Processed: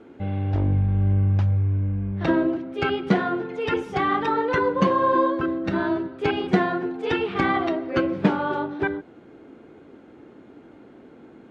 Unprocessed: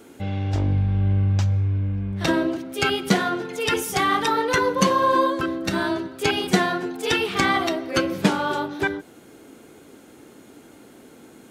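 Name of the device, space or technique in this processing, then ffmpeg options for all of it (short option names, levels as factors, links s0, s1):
phone in a pocket: -af "lowpass=3100,equalizer=f=340:t=o:w=0.3:g=2,highshelf=f=2300:g=-9"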